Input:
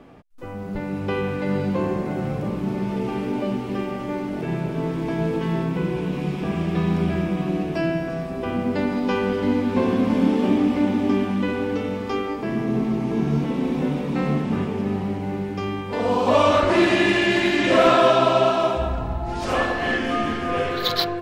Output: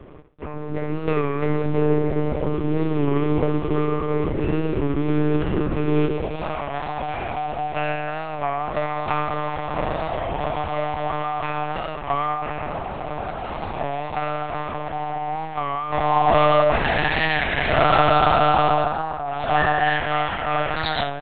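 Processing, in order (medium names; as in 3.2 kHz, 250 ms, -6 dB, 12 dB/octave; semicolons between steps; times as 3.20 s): comb 5.2 ms, depth 53%; in parallel at -2 dB: peak limiter -14 dBFS, peak gain reduction 10.5 dB; on the sum: hard clipper -12.5 dBFS, distortion -13 dB; on a send: flutter echo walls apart 11.5 m, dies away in 0.41 s; on the sum: high-pass sweep 290 Hz -> 710 Hz, 5.81–6.66 s; monotone LPC vocoder at 8 kHz 150 Hz; warped record 33 1/3 rpm, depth 100 cents; trim -4 dB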